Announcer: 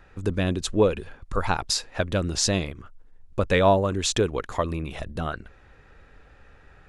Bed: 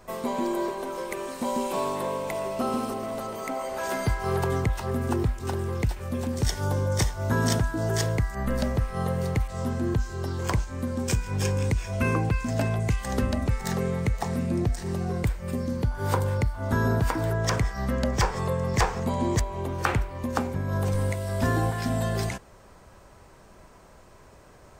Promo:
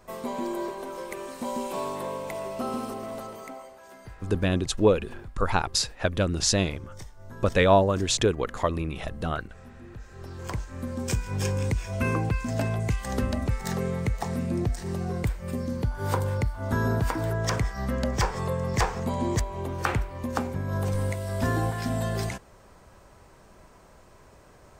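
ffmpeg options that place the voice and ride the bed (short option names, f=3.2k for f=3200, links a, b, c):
-filter_complex "[0:a]adelay=4050,volume=0dB[a];[1:a]volume=14.5dB,afade=t=out:st=3.15:d=0.64:silence=0.158489,afade=t=in:st=9.93:d=1.27:silence=0.125893[b];[a][b]amix=inputs=2:normalize=0"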